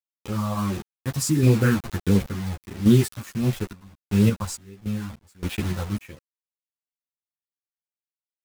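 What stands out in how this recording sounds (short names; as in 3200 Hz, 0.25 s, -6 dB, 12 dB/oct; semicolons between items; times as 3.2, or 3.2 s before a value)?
phasing stages 4, 1.5 Hz, lowest notch 380–1200 Hz; a quantiser's noise floor 6-bit, dither none; random-step tremolo 3.5 Hz, depth 95%; a shimmering, thickened sound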